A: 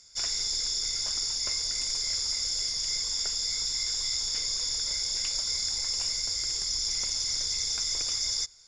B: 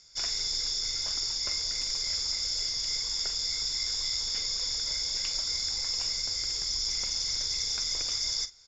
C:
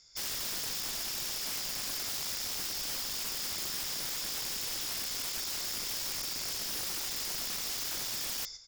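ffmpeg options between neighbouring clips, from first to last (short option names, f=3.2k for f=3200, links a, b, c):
-filter_complex "[0:a]lowpass=f=6.5k:w=0.5412,lowpass=f=6.5k:w=1.3066,asplit=2[a][b];[b]adelay=44,volume=-13dB[c];[a][c]amix=inputs=2:normalize=0"
-af "aecho=1:1:119|238|357:0.237|0.0664|0.0186,aeval=exprs='(mod(22.4*val(0)+1,2)-1)/22.4':c=same,volume=-3.5dB"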